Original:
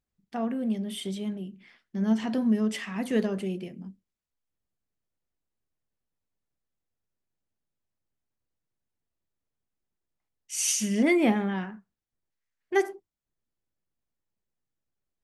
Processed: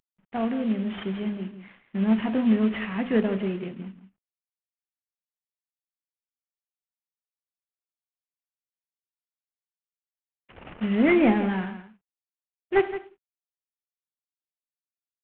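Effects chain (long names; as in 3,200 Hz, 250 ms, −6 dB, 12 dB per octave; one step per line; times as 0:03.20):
variable-slope delta modulation 16 kbit/s
single-tap delay 168 ms −12.5 dB
level +3.5 dB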